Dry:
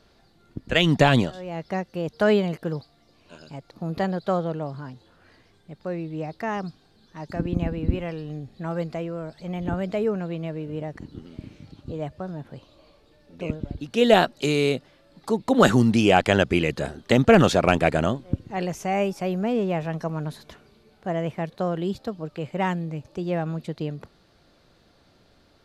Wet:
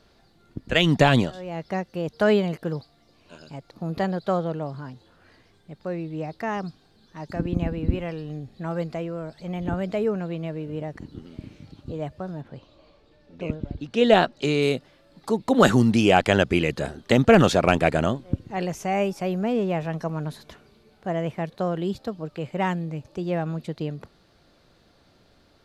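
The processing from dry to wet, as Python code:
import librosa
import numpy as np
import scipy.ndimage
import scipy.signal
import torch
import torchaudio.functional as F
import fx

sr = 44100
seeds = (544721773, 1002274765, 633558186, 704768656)

y = fx.air_absorb(x, sr, metres=66.0, at=(12.41, 14.61), fade=0.02)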